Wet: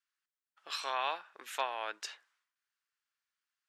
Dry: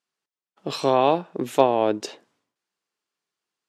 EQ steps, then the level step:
high-pass with resonance 1,500 Hz, resonance Q 2.1
−7.5 dB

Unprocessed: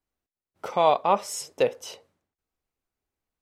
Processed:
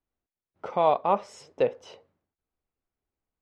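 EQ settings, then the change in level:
head-to-tape spacing loss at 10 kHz 25 dB
0.0 dB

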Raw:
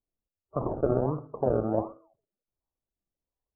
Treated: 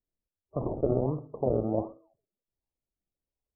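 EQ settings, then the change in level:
moving average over 28 samples
0.0 dB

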